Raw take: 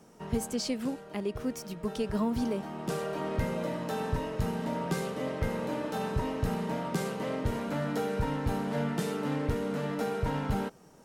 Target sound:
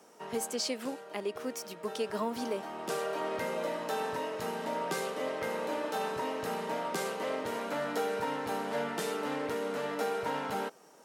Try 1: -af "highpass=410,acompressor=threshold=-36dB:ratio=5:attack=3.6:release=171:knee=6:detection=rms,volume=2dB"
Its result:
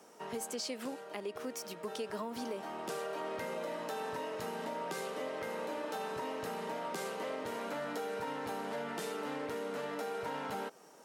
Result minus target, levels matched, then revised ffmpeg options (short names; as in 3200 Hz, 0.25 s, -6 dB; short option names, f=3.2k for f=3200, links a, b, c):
compressor: peak gain reduction +8 dB
-af "highpass=410,volume=2dB"